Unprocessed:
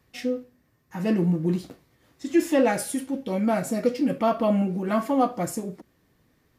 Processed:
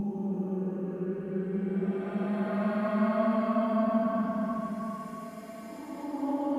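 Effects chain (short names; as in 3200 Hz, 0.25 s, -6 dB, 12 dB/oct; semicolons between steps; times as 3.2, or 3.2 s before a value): Paulstretch 21×, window 0.10 s, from 4.79; tilt -2 dB/oct; gain -8 dB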